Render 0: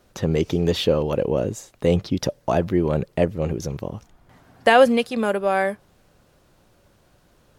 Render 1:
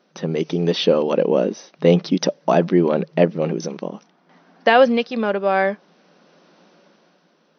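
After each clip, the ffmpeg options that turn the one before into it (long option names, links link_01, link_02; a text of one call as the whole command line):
ffmpeg -i in.wav -af "afftfilt=real='re*between(b*sr/4096,160,6200)':imag='im*between(b*sr/4096,160,6200)':win_size=4096:overlap=0.75,dynaudnorm=framelen=130:gausssize=13:maxgain=12dB,volume=-1dB" out.wav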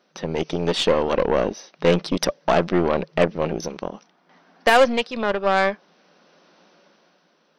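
ffmpeg -i in.wav -af "aeval=exprs='0.841*(cos(1*acos(clip(val(0)/0.841,-1,1)))-cos(1*PI/2))+0.075*(cos(8*acos(clip(val(0)/0.841,-1,1)))-cos(8*PI/2))':channel_layout=same,lowshelf=frequency=430:gain=-6.5" out.wav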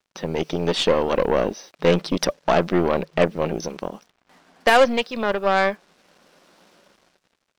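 ffmpeg -i in.wav -af "acrusher=bits=8:mix=0:aa=0.5" out.wav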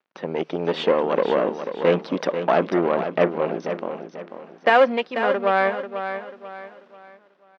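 ffmpeg -i in.wav -af "highpass=220,lowpass=2400,aecho=1:1:490|980|1470|1960:0.355|0.128|0.046|0.0166" out.wav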